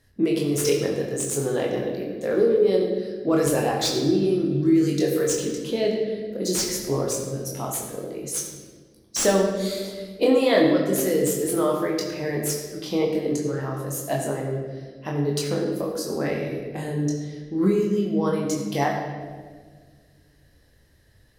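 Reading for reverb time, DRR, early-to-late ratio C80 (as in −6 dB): 1.6 s, −1.5 dB, 5.0 dB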